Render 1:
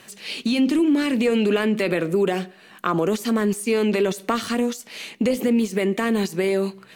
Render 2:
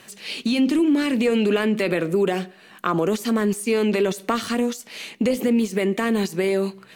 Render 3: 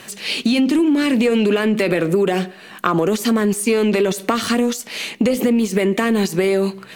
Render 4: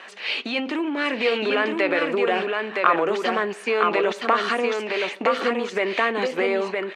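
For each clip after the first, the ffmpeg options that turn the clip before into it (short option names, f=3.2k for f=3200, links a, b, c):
-af anull
-filter_complex "[0:a]asplit=2[a][b];[b]asoftclip=type=tanh:threshold=-21dB,volume=-9dB[c];[a][c]amix=inputs=2:normalize=0,acompressor=threshold=-19dB:ratio=6,volume=6dB"
-af "highpass=650,lowpass=2.4k,aecho=1:1:965:0.668,volume=2dB"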